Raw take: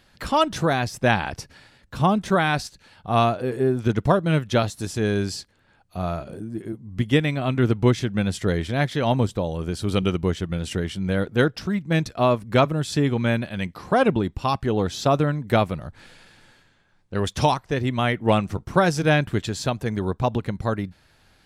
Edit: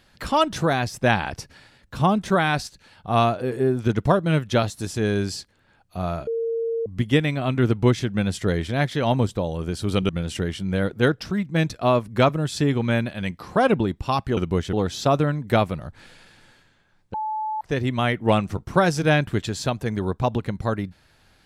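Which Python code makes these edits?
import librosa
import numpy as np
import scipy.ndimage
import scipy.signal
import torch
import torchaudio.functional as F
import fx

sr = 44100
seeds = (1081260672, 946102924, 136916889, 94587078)

y = fx.edit(x, sr, fx.bleep(start_s=6.27, length_s=0.59, hz=458.0, db=-22.0),
    fx.move(start_s=10.09, length_s=0.36, to_s=14.73),
    fx.bleep(start_s=17.14, length_s=0.47, hz=865.0, db=-24.0), tone=tone)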